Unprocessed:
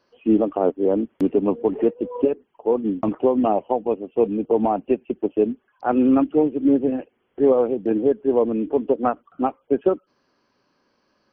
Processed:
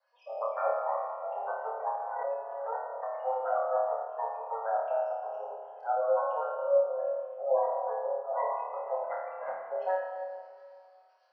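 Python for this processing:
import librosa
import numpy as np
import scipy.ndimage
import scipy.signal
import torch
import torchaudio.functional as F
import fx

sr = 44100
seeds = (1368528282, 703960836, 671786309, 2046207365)

y = fx.lower_of_two(x, sr, delay_ms=9.4)
y = scipy.signal.sosfilt(scipy.signal.butter(12, 520.0, 'highpass', fs=sr, output='sos'), y)
y = fx.spec_gate(y, sr, threshold_db=-15, keep='strong')
y = fx.lowpass(y, sr, hz=1000.0, slope=6, at=(3.4, 4.4))
y = fx.over_compress(y, sr, threshold_db=-29.0, ratio=-0.5, at=(9.03, 9.63))
y = fx.harmonic_tremolo(y, sr, hz=7.7, depth_pct=70, crossover_hz=720.0)
y = fx.room_flutter(y, sr, wall_m=4.6, rt60_s=0.75)
y = fx.rev_plate(y, sr, seeds[0], rt60_s=2.2, hf_ratio=0.85, predelay_ms=0, drr_db=2.0)
y = fx.pre_swell(y, sr, db_per_s=29.0, at=(2.0, 2.74))
y = F.gain(torch.from_numpy(y), -5.0).numpy()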